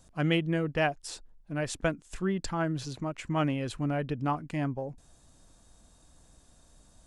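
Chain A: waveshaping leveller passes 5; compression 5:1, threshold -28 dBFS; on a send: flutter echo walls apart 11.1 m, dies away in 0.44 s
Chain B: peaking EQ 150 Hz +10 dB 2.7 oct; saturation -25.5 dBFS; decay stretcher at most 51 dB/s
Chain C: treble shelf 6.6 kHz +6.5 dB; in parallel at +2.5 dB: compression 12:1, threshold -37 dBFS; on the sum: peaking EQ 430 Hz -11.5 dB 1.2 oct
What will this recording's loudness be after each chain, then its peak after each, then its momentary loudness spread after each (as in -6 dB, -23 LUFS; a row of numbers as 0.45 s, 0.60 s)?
-29.0 LUFS, -31.0 LUFS, -31.5 LUFS; -18.0 dBFS, -15.5 dBFS, -13.0 dBFS; 3 LU, 9 LU, 22 LU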